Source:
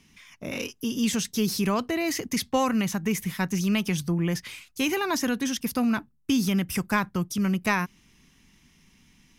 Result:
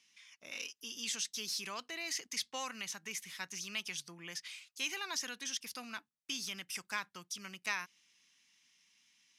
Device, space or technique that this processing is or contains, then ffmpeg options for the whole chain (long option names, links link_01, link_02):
piezo pickup straight into a mixer: -af "lowpass=5000,aderivative,volume=1.5dB"